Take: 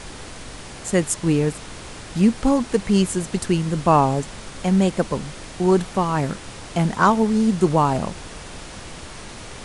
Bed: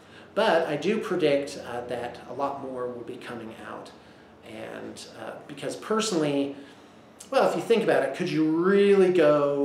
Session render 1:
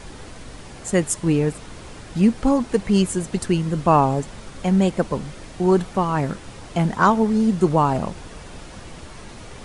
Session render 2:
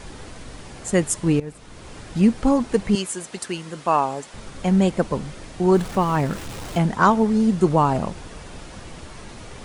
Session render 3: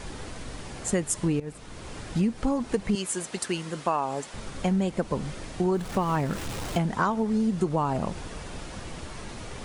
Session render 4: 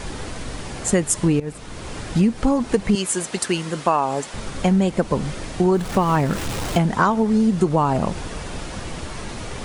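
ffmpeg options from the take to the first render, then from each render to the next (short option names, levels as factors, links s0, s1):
-af "afftdn=nr=6:nf=-38"
-filter_complex "[0:a]asettb=1/sr,asplit=3[s0][s1][s2];[s0]atrim=end=2.954[s3];[s1]atrim=start=2.95:end=4.34,asetpts=PTS-STARTPTS,afade=t=in:d=0.004:c=qsin,afade=t=out:st=1.386:d=0.004:c=qsin,highpass=f=800:p=1[s4];[s2]atrim=start=4.336[s5];[s3][s4]acrossfade=d=0.004:c1=hsin:c2=qsin[s6];[s6][s5]acrossfade=d=0.004:c1=qsin:c2=hsin,asettb=1/sr,asplit=3[s7][s8][s9];[s7]atrim=end=5.744[s10];[s8]atrim=start=5.74:end=6.79,asetpts=PTS-STARTPTS,afade=t=in:d=0.004:c=qsin,afade=t=out:st=1.046:d=0.004:c=qsin,aeval=exprs='val(0)+0.5*0.0224*sgn(val(0))':c=same[s11];[s9]atrim=start=6.786[s12];[s10][s11]acrossfade=d=0.004:c1=hsin:c2=qsin[s13];[s13][s12]acrossfade=d=0.004:c1=qsin:c2=hsin,asplit=2[s14][s15];[s14]atrim=end=1.4,asetpts=PTS-STARTPTS,afade=t=out:st=1.396:d=0.004:c=hsin:silence=0.141254[s16];[s15]atrim=start=1.4,asetpts=PTS-STARTPTS,afade=t=in:d=0.59:silence=0.141254[s17];[s16][s17]concat=n=2:v=0:a=1"
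-af "acompressor=threshold=0.0794:ratio=6"
-af "volume=2.37"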